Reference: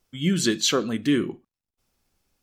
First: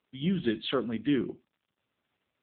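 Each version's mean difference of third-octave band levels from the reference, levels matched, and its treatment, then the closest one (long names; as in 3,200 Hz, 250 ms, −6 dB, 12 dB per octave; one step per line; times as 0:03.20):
6.5 dB: high-pass filter 61 Hz 6 dB per octave
surface crackle 110 per second −50 dBFS
level −5 dB
AMR narrowband 6.7 kbit/s 8,000 Hz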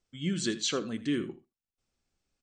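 2.5 dB: linear-phase brick-wall low-pass 9,100 Hz
parametric band 940 Hz −3.5 dB 0.56 octaves
single-tap delay 81 ms −16 dB
level −8.5 dB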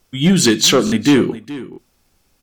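3.5 dB: sine wavefolder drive 5 dB, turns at −9 dBFS
single-tap delay 423 ms −16 dB
buffer that repeats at 0:00.85/0:01.71, samples 1,024, times 2
level +2.5 dB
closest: second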